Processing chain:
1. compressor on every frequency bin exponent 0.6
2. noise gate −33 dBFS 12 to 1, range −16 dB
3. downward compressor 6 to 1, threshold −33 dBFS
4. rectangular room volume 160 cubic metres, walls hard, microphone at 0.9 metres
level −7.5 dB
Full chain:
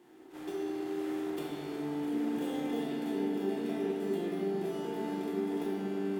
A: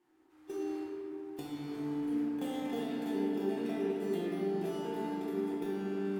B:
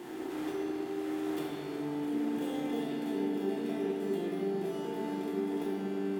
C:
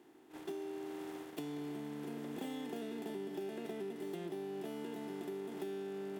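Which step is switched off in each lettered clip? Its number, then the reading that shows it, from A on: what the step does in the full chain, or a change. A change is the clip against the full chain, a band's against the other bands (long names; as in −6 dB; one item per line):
1, change in momentary loudness spread +3 LU
2, change in momentary loudness spread −1 LU
4, echo-to-direct ratio 6.0 dB to none audible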